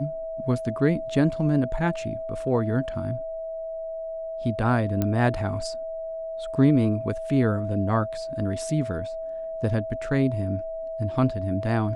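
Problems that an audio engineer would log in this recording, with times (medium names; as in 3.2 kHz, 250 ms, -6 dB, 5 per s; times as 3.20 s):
whine 650 Hz -30 dBFS
5.02 s: pop -12 dBFS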